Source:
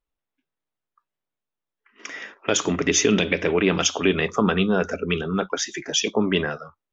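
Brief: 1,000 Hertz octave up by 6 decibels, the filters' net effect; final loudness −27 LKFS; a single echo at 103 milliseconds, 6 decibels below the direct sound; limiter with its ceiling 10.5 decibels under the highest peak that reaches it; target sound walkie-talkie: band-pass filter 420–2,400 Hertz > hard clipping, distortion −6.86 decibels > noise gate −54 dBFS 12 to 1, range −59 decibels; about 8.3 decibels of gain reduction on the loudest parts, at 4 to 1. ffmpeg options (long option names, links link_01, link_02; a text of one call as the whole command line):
ffmpeg -i in.wav -af "equalizer=frequency=1000:width_type=o:gain=8.5,acompressor=threshold=-23dB:ratio=4,alimiter=limit=-16.5dB:level=0:latency=1,highpass=420,lowpass=2400,aecho=1:1:103:0.501,asoftclip=type=hard:threshold=-32dB,agate=range=-59dB:threshold=-54dB:ratio=12,volume=8.5dB" out.wav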